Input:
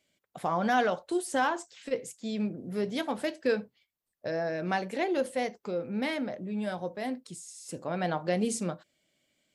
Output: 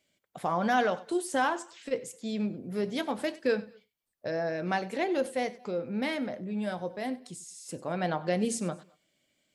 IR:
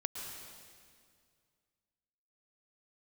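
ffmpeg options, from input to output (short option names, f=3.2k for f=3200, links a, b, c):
-filter_complex "[0:a]asplit=2[a][b];[1:a]atrim=start_sample=2205,afade=t=out:st=0.18:d=0.01,atrim=end_sample=8379,adelay=96[c];[b][c]afir=irnorm=-1:irlink=0,volume=-17.5dB[d];[a][d]amix=inputs=2:normalize=0"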